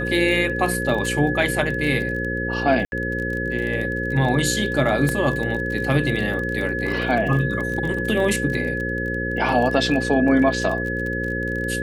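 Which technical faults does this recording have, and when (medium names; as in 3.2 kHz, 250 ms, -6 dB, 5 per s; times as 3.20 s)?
buzz 60 Hz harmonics 9 -27 dBFS
crackle 29 per s -27 dBFS
whine 1.7 kHz -26 dBFS
2.85–2.92 s: dropout 71 ms
5.09 s: pop -10 dBFS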